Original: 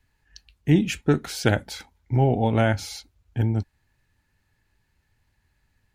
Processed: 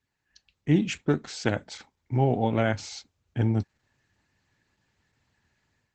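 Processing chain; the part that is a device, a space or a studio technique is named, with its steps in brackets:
video call (high-pass filter 110 Hz 12 dB per octave; automatic gain control gain up to 10 dB; level −8 dB; Opus 12 kbit/s 48,000 Hz)

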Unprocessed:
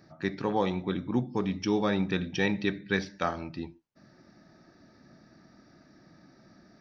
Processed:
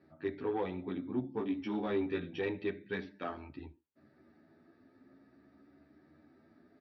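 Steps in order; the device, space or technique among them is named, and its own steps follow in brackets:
0:01.34–0:02.38: double-tracking delay 18 ms −2.5 dB
barber-pole flanger into a guitar amplifier (barber-pole flanger 10.3 ms +0.49 Hz; soft clipping −24 dBFS, distortion −16 dB; loudspeaker in its box 77–3,500 Hz, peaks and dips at 80 Hz +10 dB, 120 Hz −5 dB, 180 Hz −6 dB, 270 Hz +8 dB, 410 Hz +7 dB)
level −5.5 dB

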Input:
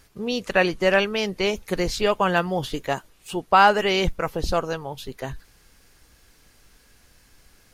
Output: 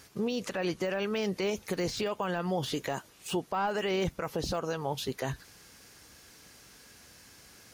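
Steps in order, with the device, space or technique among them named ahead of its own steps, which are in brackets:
broadcast voice chain (high-pass filter 100 Hz 12 dB per octave; de-essing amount 85%; downward compressor 4 to 1, threshold −27 dBFS, peak gain reduction 10.5 dB; parametric band 5,900 Hz +3.5 dB 0.7 octaves; brickwall limiter −24.5 dBFS, peak gain reduction 10 dB)
level +2.5 dB

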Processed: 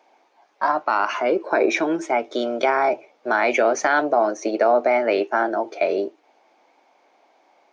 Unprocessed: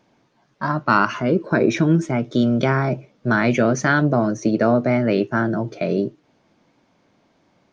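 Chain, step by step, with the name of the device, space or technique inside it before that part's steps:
laptop speaker (high-pass filter 350 Hz 24 dB per octave; parametric band 790 Hz +11 dB 0.57 octaves; parametric band 2,300 Hz +6 dB 0.3 octaves; brickwall limiter −8 dBFS, peak gain reduction 8.5 dB)

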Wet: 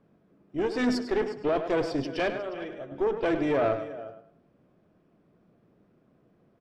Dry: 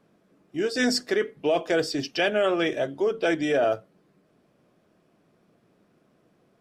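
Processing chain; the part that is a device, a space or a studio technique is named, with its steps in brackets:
RIAA equalisation playback
0:02.30–0:02.92: noise gate −17 dBFS, range −12 dB
low-shelf EQ 200 Hz −8.5 dB
single-tap delay 359 ms −15.5 dB
rockabilly slapback (tube saturation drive 19 dB, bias 0.65; tape delay 103 ms, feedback 30%, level −8 dB, low-pass 4,100 Hz)

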